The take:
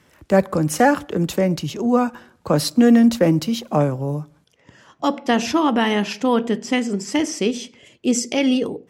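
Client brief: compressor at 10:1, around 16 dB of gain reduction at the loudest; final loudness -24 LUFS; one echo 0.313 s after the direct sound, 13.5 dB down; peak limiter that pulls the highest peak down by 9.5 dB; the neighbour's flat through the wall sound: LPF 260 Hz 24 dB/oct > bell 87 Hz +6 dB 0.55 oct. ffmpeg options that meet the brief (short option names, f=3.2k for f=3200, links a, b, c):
-af "acompressor=threshold=-26dB:ratio=10,alimiter=limit=-23.5dB:level=0:latency=1,lowpass=f=260:w=0.5412,lowpass=f=260:w=1.3066,equalizer=f=87:t=o:w=0.55:g=6,aecho=1:1:313:0.211,volume=13dB"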